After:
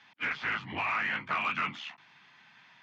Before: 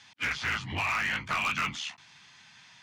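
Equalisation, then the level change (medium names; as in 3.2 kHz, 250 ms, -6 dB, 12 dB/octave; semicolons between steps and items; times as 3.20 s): band-pass 180–2500 Hz; 0.0 dB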